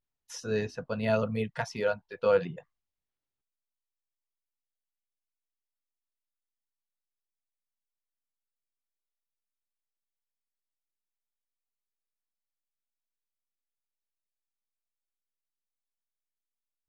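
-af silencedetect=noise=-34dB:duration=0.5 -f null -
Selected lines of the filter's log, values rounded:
silence_start: 2.59
silence_end: 16.88 | silence_duration: 14.30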